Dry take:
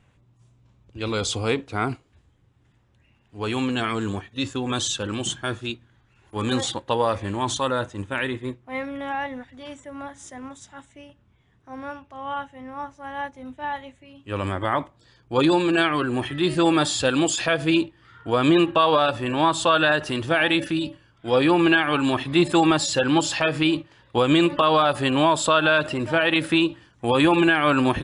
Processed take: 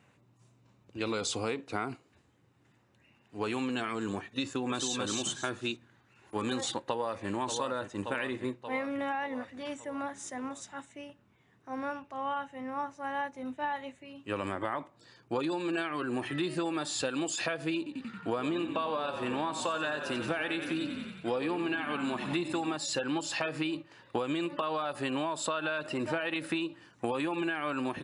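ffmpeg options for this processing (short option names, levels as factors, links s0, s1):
-filter_complex "[0:a]asplit=2[s0][s1];[s1]afade=t=in:st=4.47:d=0.01,afade=t=out:st=4.95:d=0.01,aecho=0:1:270|540|810:0.707946|0.141589|0.0283178[s2];[s0][s2]amix=inputs=2:normalize=0,asplit=2[s3][s4];[s4]afade=t=in:st=6.79:d=0.01,afade=t=out:st=7.29:d=0.01,aecho=0:1:580|1160|1740|2320|2900|3480:0.334965|0.184231|0.101327|0.0557299|0.0306514|0.0168583[s5];[s3][s5]amix=inputs=2:normalize=0,asettb=1/sr,asplit=3[s6][s7][s8];[s6]atrim=end=17.774[s9];[s7]atrim=start=17.77:end=22.76,asetpts=PTS-STARTPTS,afade=t=in:d=0.004:c=qsin,afade=t=out:st=4.986:d=0.004:c=qsin,asplit=9[s10][s11][s12][s13][s14][s15][s16][s17][s18];[s11]adelay=91,afreqshift=-34,volume=0.299[s19];[s12]adelay=182,afreqshift=-68,volume=0.184[s20];[s13]adelay=273,afreqshift=-102,volume=0.115[s21];[s14]adelay=364,afreqshift=-136,volume=0.0708[s22];[s15]adelay=455,afreqshift=-170,volume=0.0442[s23];[s16]adelay=546,afreqshift=-204,volume=0.0272[s24];[s17]adelay=637,afreqshift=-238,volume=0.017[s25];[s18]adelay=728,afreqshift=-272,volume=0.0105[s26];[s10][s19][s20][s21][s22][s23][s24][s25][s26]amix=inputs=9:normalize=0,atrim=end_sample=220059[s27];[s8]atrim=start=22.756[s28];[s9][s27]acrossfade=d=0.004:c1=hsin:c2=qsin[s29];[s29][s28]acrossfade=d=0.004:c1=qsin:c2=hsin,highpass=170,bandreject=f=3300:w=10,acompressor=threshold=0.0355:ratio=12"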